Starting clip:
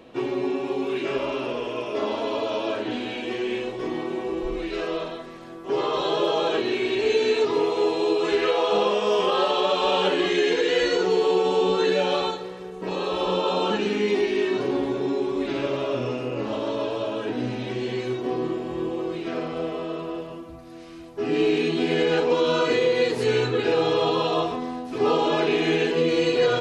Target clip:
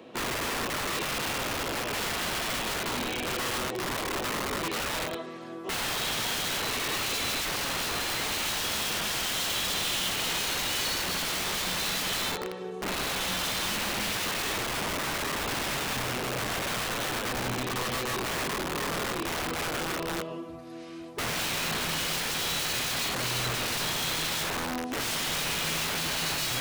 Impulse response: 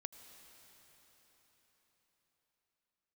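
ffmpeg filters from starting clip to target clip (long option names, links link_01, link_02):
-filter_complex "[0:a]highpass=110,acrossover=split=150|2700[link_01][link_02][link_03];[link_02]aeval=exprs='(mod(21.1*val(0)+1,2)-1)/21.1':channel_layout=same[link_04];[link_01][link_04][link_03]amix=inputs=3:normalize=0"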